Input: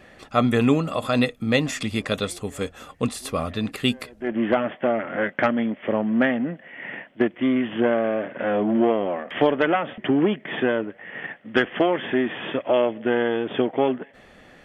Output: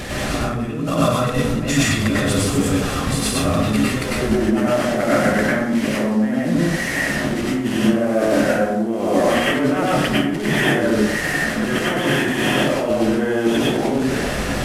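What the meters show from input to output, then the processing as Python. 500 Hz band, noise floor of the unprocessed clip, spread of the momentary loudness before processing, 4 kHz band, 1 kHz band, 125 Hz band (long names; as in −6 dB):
+3.0 dB, −51 dBFS, 10 LU, +7.0 dB, +4.0 dB, +9.0 dB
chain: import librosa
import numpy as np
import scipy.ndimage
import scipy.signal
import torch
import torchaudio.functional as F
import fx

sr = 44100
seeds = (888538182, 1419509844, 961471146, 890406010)

y = fx.delta_mod(x, sr, bps=64000, step_db=-32.0)
y = fx.low_shelf(y, sr, hz=230.0, db=9.5)
y = fx.over_compress(y, sr, threshold_db=-26.0, ratio=-1.0)
y = fx.rev_plate(y, sr, seeds[0], rt60_s=0.78, hf_ratio=0.55, predelay_ms=85, drr_db=-6.5)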